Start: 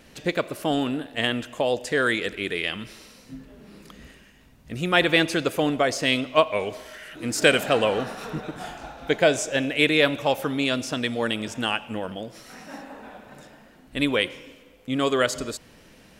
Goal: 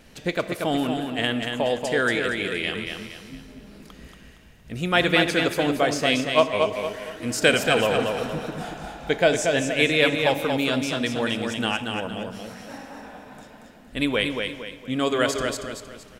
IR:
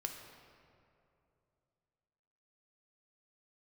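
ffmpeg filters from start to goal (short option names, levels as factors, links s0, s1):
-filter_complex "[0:a]lowshelf=f=69:g=5.5,aecho=1:1:232|464|696|928|1160:0.562|0.208|0.077|0.0285|0.0105,asplit=2[s0][s1];[1:a]atrim=start_sample=2205,asetrate=74970,aresample=44100[s2];[s1][s2]afir=irnorm=-1:irlink=0,volume=0.891[s3];[s0][s3]amix=inputs=2:normalize=0,volume=0.668"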